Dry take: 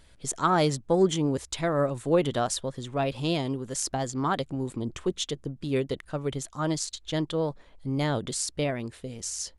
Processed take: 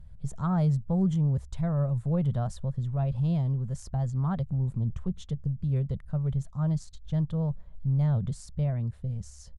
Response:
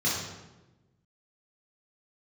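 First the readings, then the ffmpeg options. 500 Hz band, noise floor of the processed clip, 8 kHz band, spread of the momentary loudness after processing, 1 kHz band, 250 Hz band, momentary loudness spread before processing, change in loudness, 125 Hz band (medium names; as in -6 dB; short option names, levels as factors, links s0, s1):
-11.5 dB, -48 dBFS, under -15 dB, 8 LU, -11.0 dB, -1.0 dB, 9 LU, -0.5 dB, +7.5 dB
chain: -filter_complex "[0:a]firequalizer=gain_entry='entry(110,0);entry(200,-5);entry(280,-27);entry(590,-18);entry(2500,-30)':delay=0.05:min_phase=1,asplit=2[s0][s1];[s1]alimiter=level_in=4.22:limit=0.0631:level=0:latency=1,volume=0.237,volume=0.891[s2];[s0][s2]amix=inputs=2:normalize=0,volume=2"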